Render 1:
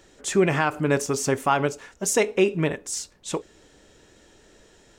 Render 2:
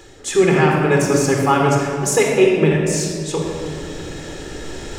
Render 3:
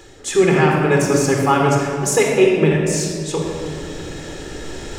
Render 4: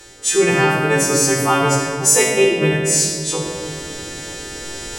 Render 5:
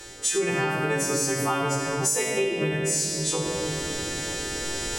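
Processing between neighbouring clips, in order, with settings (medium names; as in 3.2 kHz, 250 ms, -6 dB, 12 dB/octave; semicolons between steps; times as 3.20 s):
reverse; upward compressor, threshold -24 dBFS; reverse; simulated room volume 3800 m³, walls mixed, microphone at 4 m; trim +1 dB
no audible change
partials quantised in pitch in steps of 2 st; trim -1 dB
compression 5:1, threshold -23 dBFS, peak gain reduction 12.5 dB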